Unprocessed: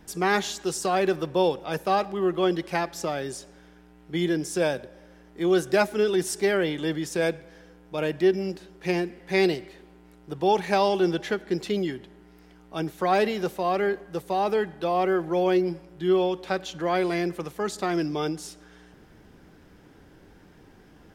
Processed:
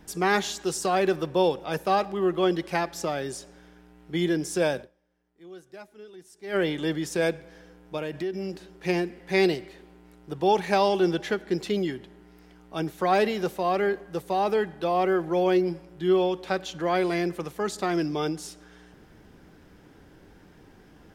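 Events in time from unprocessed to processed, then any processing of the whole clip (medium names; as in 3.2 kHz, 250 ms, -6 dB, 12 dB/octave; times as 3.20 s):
4.81–6.56 s: dip -23 dB, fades 0.47 s exponential
7.97–8.71 s: compression 4:1, threshold -28 dBFS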